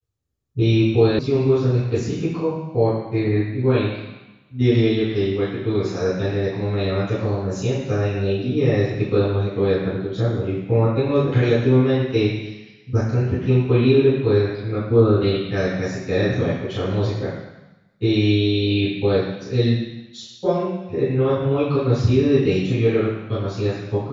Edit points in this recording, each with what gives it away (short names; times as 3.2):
1.19 sound cut off